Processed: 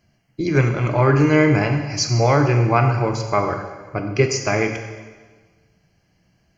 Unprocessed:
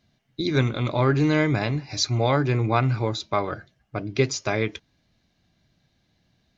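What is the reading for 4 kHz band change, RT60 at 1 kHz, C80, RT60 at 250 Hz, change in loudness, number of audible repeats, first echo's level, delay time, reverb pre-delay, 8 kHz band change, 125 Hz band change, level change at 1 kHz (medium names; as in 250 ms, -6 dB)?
+0.5 dB, 1.4 s, 8.0 dB, 1.4 s, +5.0 dB, no echo, no echo, no echo, 16 ms, no reading, +5.5 dB, +6.0 dB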